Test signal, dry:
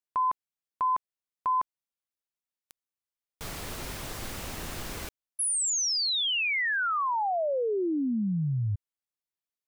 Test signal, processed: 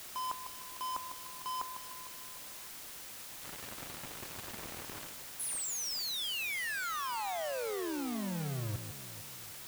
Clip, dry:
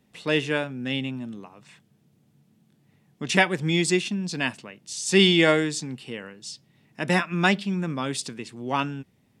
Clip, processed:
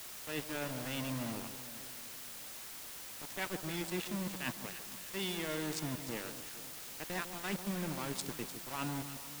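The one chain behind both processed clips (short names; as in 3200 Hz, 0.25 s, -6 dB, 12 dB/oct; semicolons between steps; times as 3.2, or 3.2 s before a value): Wiener smoothing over 9 samples; HPF 90 Hz 24 dB/oct; reverse; compressor 10:1, threshold -33 dBFS; reverse; sample gate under -36 dBFS; on a send: echo with dull and thin repeats by turns 0.151 s, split 1200 Hz, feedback 69%, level -9 dB; on the sum: added noise white -45 dBFS; gain -2.5 dB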